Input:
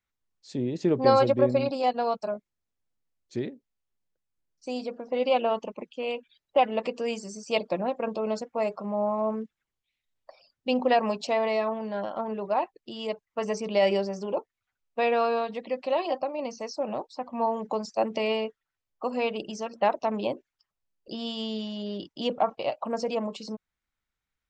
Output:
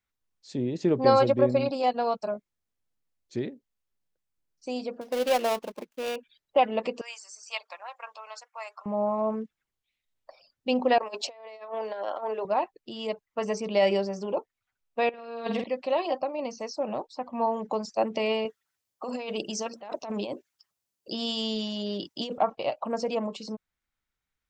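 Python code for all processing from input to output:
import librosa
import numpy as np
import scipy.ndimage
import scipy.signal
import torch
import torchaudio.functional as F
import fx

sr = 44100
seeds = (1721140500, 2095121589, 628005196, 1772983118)

y = fx.chain(x, sr, fx.dead_time(dead_ms=0.17),
    fx.peak_eq(hz=93.0, db=-9.5, octaves=1.6), at=(5.01, 6.16))
y = fx.chain(y, sr, fx.highpass(hz=1000.0, slope=24),
    fx.peak_eq(hz=3500.0, db=-4.0, octaves=1.1), at=(7.01, 8.86))
y = fx.chain(y, sr, fx.highpass(hz=370.0, slope=24),
    fx.over_compress(threshold_db=-34.0, ratio=-0.5), at=(10.98, 12.45))
y = fx.chain(y, sr, fx.over_compress(threshold_db=-33.0, ratio=-0.5),
    fx.room_flutter(wall_m=8.1, rt60_s=0.56), at=(15.09, 15.64))
y = fx.chain(y, sr, fx.highpass(hz=78.0, slope=12),
    fx.bass_treble(bass_db=-2, treble_db=8),
    fx.over_compress(threshold_db=-32.0, ratio=-1.0), at=(18.45, 22.38))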